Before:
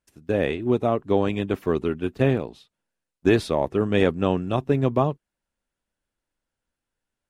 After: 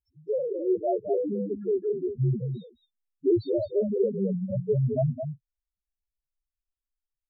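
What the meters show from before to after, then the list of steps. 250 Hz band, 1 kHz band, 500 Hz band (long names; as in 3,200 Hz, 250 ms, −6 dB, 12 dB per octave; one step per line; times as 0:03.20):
−6.0 dB, below −10 dB, −3.0 dB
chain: spectral peaks only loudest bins 1
slap from a distant wall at 37 metres, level −7 dB
level +4.5 dB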